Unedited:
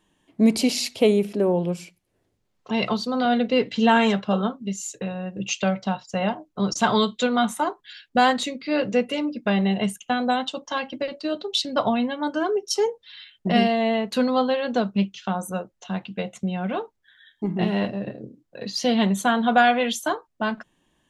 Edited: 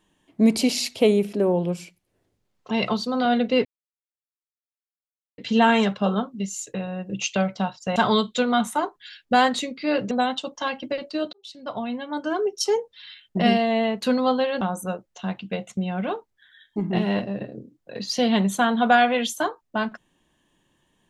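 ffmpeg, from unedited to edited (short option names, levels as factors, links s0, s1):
-filter_complex "[0:a]asplit=6[s0][s1][s2][s3][s4][s5];[s0]atrim=end=3.65,asetpts=PTS-STARTPTS,afade=t=out:st=3.646:d=0.004:c=hsin,apad=pad_dur=1.73[s6];[s1]atrim=start=3.65:end=6.232,asetpts=PTS-STARTPTS,afade=t=in:d=0.004:c=hsin[s7];[s2]atrim=start=6.798:end=8.952[s8];[s3]atrim=start=10.208:end=11.43,asetpts=PTS-STARTPTS,afade=t=out:st=1.218:d=0.004:c=hsin[s9];[s4]atrim=start=11.43:end=14.712,asetpts=PTS-STARTPTS,afade=t=in:d=1.17[s10];[s5]atrim=start=15.268[s11];[s6][s7]concat=n=2:v=0:a=1[s12];[s12][s8]acrossfade=d=0.004:c1=hsin:c2=hsin[s13];[s9][s10]concat=n=2:v=0:a=1[s14];[s13][s14]acrossfade=d=0.004:c1=hsin:c2=hsin[s15];[s15][s11]acrossfade=d=0.004:c1=hsin:c2=hsin"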